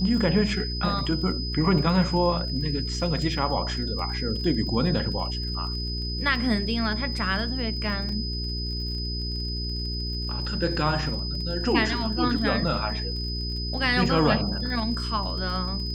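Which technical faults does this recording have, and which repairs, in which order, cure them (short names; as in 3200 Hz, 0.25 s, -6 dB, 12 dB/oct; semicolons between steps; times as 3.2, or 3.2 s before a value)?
crackle 32/s -35 dBFS
hum 60 Hz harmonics 7 -31 dBFS
tone 5000 Hz -32 dBFS
8.09 gap 2.6 ms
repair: de-click; notch 5000 Hz, Q 30; de-hum 60 Hz, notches 7; interpolate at 8.09, 2.6 ms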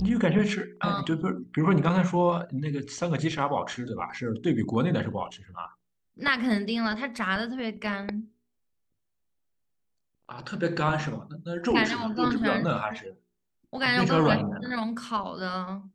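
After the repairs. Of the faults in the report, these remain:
none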